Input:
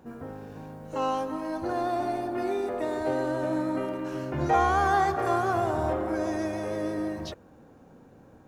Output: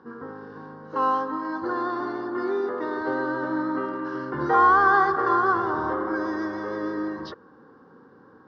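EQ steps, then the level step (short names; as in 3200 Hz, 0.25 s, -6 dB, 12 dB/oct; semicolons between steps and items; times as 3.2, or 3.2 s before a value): speaker cabinet 420–6000 Hz, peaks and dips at 450 Hz +5 dB, 720 Hz +9 dB, 1100 Hz +10 dB, 1600 Hz +7 dB, 2600 Hz +7 dB, 5000 Hz +8 dB; tilt -4 dB/oct; fixed phaser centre 2500 Hz, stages 6; +3.5 dB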